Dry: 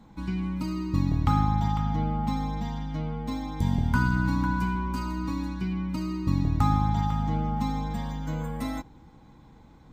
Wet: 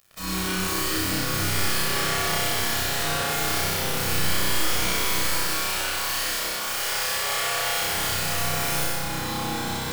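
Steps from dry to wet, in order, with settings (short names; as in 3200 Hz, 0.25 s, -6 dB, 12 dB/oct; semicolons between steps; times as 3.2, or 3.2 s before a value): tracing distortion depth 0.26 ms; AGC gain up to 11.5 dB; soft clip -13.5 dBFS, distortion -11 dB; compressor 3:1, threshold -35 dBFS, peak gain reduction 14 dB; tilt +4.5 dB/oct; wrapped overs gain 37 dB; 5.27–7.75 steep high-pass 450 Hz 36 dB/oct; bit-crush 8-bit; flutter echo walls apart 5.4 m, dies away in 1.2 s; reverb RT60 2.0 s, pre-delay 22 ms, DRR -5 dB; gain +4.5 dB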